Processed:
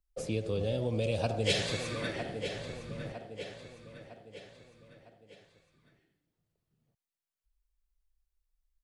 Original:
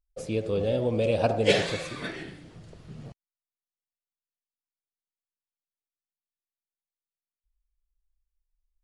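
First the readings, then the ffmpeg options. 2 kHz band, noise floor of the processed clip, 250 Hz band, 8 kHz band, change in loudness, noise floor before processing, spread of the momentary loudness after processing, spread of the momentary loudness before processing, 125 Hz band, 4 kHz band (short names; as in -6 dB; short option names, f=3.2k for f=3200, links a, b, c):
-5.0 dB, under -85 dBFS, -5.0 dB, 0.0 dB, -7.5 dB, under -85 dBFS, 21 LU, 22 LU, -2.0 dB, -2.0 dB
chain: -filter_complex "[0:a]aecho=1:1:956|1912|2868|3824:0.211|0.093|0.0409|0.018,acrossover=split=130|3000[a][b][c];[b]acompressor=threshold=-34dB:ratio=2.5[d];[a][d][c]amix=inputs=3:normalize=0"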